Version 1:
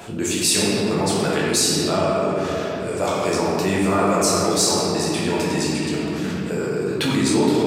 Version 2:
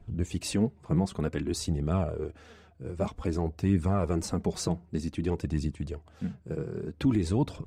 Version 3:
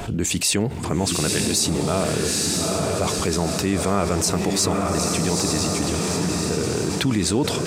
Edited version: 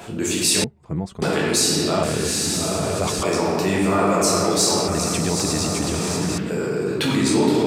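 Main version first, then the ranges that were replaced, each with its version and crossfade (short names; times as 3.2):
1
0.64–1.22 from 2
2.03–3.23 from 3
4.88–6.38 from 3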